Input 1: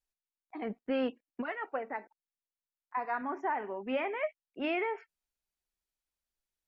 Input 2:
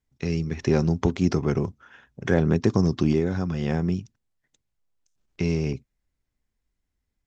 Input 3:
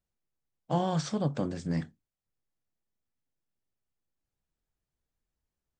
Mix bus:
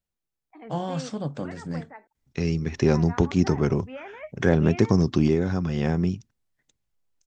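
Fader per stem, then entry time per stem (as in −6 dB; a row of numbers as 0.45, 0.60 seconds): −6.5, +1.0, −1.0 decibels; 0.00, 2.15, 0.00 seconds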